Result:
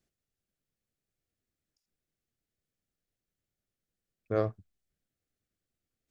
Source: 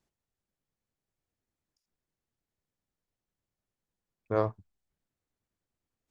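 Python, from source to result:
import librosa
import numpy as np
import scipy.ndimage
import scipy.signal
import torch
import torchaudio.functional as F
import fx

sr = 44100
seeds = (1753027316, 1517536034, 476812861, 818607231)

y = fx.peak_eq(x, sr, hz=950.0, db=-15.0, octaves=0.37)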